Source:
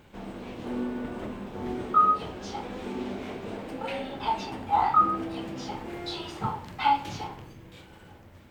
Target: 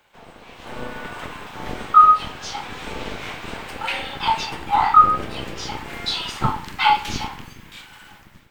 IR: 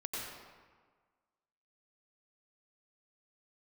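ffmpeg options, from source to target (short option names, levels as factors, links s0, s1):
-filter_complex "[0:a]asubboost=boost=4.5:cutoff=230,acrossover=split=570|770[s0][s1][s2];[s0]aeval=exprs='0.299*(cos(1*acos(clip(val(0)/0.299,-1,1)))-cos(1*PI/2))+0.0376*(cos(7*acos(clip(val(0)/0.299,-1,1)))-cos(7*PI/2))+0.0596*(cos(8*acos(clip(val(0)/0.299,-1,1)))-cos(8*PI/2))':c=same[s3];[s2]dynaudnorm=f=480:g=3:m=4.73[s4];[s3][s1][s4]amix=inputs=3:normalize=0"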